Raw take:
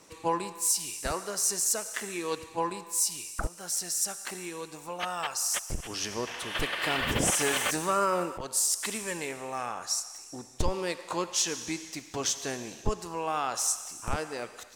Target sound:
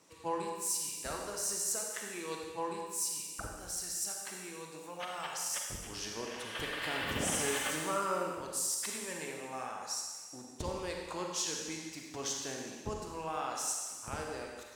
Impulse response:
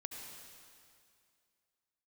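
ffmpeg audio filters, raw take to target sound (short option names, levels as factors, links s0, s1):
-filter_complex "[0:a]highpass=55[s0];[1:a]atrim=start_sample=2205,asetrate=83790,aresample=44100[s1];[s0][s1]afir=irnorm=-1:irlink=0,volume=1.19"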